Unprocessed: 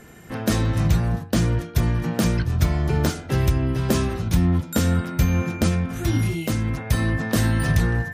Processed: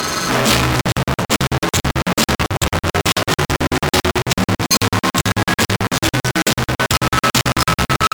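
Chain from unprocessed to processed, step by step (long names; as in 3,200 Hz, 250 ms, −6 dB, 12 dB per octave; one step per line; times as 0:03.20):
partials spread apart or drawn together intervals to 84%
in parallel at −3 dB: fuzz pedal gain 48 dB, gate −53 dBFS
on the sum: low-shelf EQ 450 Hz −12 dB
on a send: repeating echo 85 ms, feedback 59%, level −18 dB
on the sum: regular buffer underruns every 0.11 s, samples 2,048, zero, from 0:00.81
level +6.5 dB
MP3 192 kbit/s 44,100 Hz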